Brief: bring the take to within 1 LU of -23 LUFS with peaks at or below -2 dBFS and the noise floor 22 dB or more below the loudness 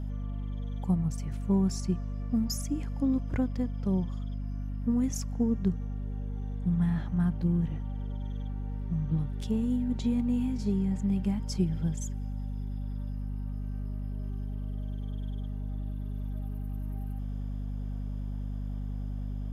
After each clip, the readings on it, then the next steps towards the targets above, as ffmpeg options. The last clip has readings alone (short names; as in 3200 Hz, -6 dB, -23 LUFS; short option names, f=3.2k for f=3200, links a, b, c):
hum 50 Hz; harmonics up to 250 Hz; hum level -32 dBFS; loudness -32.5 LUFS; peak -16.5 dBFS; loudness target -23.0 LUFS
-> -af "bandreject=f=50:t=h:w=6,bandreject=f=100:t=h:w=6,bandreject=f=150:t=h:w=6,bandreject=f=200:t=h:w=6,bandreject=f=250:t=h:w=6"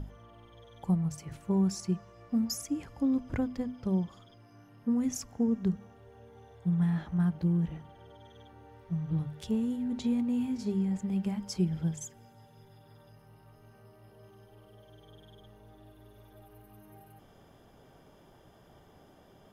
hum none; loudness -32.0 LUFS; peak -18.5 dBFS; loudness target -23.0 LUFS
-> -af "volume=9dB"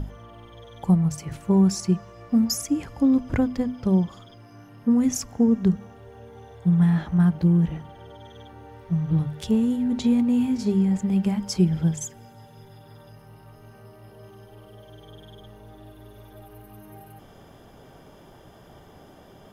loudness -23.0 LUFS; peak -9.5 dBFS; noise floor -50 dBFS